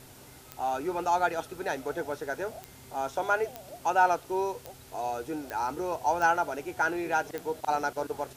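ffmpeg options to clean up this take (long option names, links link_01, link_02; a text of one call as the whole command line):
ffmpeg -i in.wav -af "adeclick=threshold=4,bandreject=frequency=130.3:width_type=h:width=4,bandreject=frequency=260.6:width_type=h:width=4,bandreject=frequency=390.9:width_type=h:width=4,afwtdn=0.0022" out.wav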